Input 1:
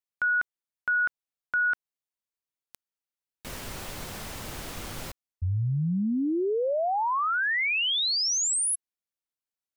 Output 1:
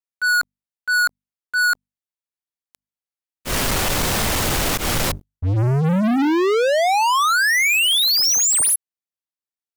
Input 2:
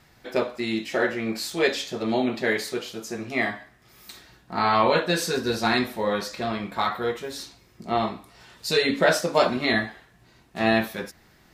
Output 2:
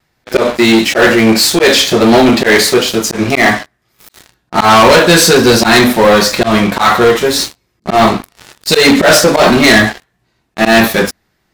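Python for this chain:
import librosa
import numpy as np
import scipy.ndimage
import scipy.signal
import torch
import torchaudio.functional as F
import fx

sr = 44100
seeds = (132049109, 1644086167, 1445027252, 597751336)

y = fx.hum_notches(x, sr, base_hz=50, count=5)
y = fx.auto_swell(y, sr, attack_ms=116.0)
y = fx.leveller(y, sr, passes=5)
y = fx.vibrato(y, sr, rate_hz=1.5, depth_cents=31.0)
y = y * librosa.db_to_amplitude(5.0)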